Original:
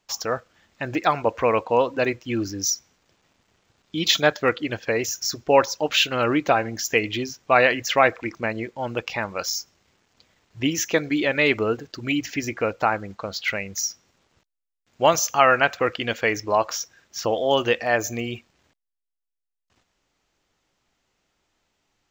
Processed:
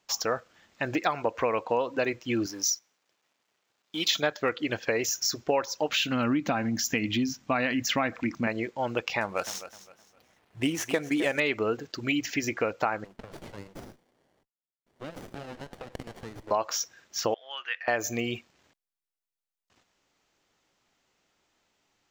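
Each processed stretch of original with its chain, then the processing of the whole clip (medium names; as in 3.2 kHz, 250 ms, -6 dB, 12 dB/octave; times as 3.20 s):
2.46–4.11 s: companding laws mixed up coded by A + high-pass 500 Hz 6 dB/octave
5.92–8.47 s: resonant low shelf 320 Hz +6.5 dB, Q 3 + compression 1.5:1, threshold -25 dBFS
9.21–11.40 s: median filter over 9 samples + peaking EQ 730 Hz +4 dB 0.28 oct + feedback delay 259 ms, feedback 29%, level -15 dB
13.04–16.51 s: high-pass 970 Hz 6 dB/octave + compression 10:1, threshold -32 dBFS + sliding maximum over 33 samples
17.34–17.88 s: dynamic bell 2.7 kHz, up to +3 dB, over -34 dBFS, Q 0.75 + ladder band-pass 1.9 kHz, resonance 45%
whole clip: bass shelf 89 Hz -11 dB; compression 5:1, threshold -23 dBFS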